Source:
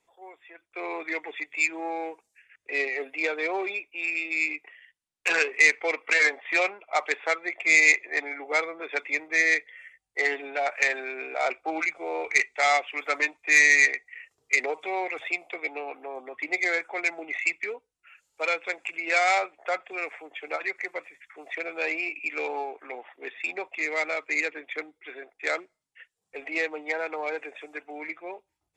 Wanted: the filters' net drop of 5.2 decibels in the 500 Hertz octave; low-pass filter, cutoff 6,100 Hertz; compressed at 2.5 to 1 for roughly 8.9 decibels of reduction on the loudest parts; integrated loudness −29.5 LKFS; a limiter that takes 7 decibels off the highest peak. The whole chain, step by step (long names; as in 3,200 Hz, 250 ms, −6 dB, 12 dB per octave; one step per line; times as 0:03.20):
low-pass filter 6,100 Hz
parametric band 500 Hz −6.5 dB
downward compressor 2.5 to 1, threshold −28 dBFS
level +3 dB
brickwall limiter −17 dBFS